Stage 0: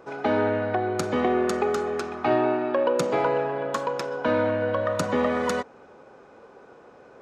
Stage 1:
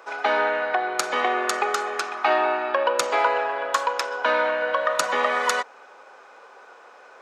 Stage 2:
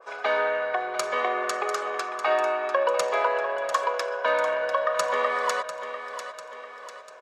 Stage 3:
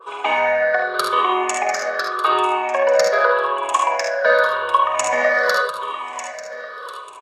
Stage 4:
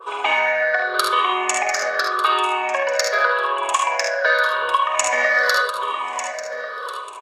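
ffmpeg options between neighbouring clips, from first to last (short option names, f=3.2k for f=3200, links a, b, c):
-af "highpass=920,volume=8.5dB"
-filter_complex "[0:a]aecho=1:1:1.8:0.53,asplit=2[a][b];[b]aecho=0:1:696|1392|2088|2784|3480:0.282|0.132|0.0623|0.0293|0.0138[c];[a][c]amix=inputs=2:normalize=0,adynamicequalizer=threshold=0.0282:dfrequency=1900:dqfactor=0.7:tfrequency=1900:tqfactor=0.7:attack=5:release=100:ratio=0.375:range=1.5:mode=cutabove:tftype=highshelf,volume=-4dB"
-filter_complex "[0:a]afftfilt=real='re*pow(10,16/40*sin(2*PI*(0.64*log(max(b,1)*sr/1024/100)/log(2)-(-0.86)*(pts-256)/sr)))':imag='im*pow(10,16/40*sin(2*PI*(0.64*log(max(b,1)*sr/1024/100)/log(2)-(-0.86)*(pts-256)/sr)))':win_size=1024:overlap=0.75,asplit=2[a][b];[b]aecho=0:1:49|66|76:0.473|0.316|0.447[c];[a][c]amix=inputs=2:normalize=0,volume=3.5dB"
-filter_complex "[0:a]acrossover=split=1400[a][b];[a]acompressor=threshold=-25dB:ratio=6[c];[c][b]amix=inputs=2:normalize=0,equalizer=f=150:t=o:w=1.2:g=-8.5,volume=3.5dB"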